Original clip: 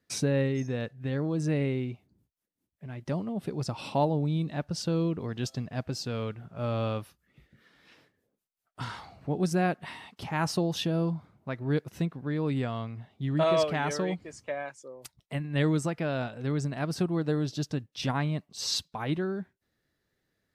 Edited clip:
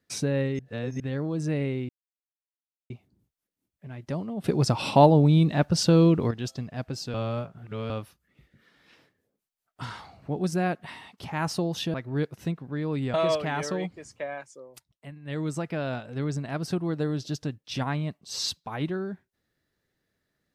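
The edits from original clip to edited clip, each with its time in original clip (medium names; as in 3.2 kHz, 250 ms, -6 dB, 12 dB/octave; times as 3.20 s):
0.59–1.00 s: reverse
1.89 s: insert silence 1.01 s
3.43–5.30 s: gain +9.5 dB
6.13–6.89 s: reverse
10.93–11.48 s: delete
12.68–13.42 s: delete
14.83–15.94 s: dip -10 dB, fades 0.39 s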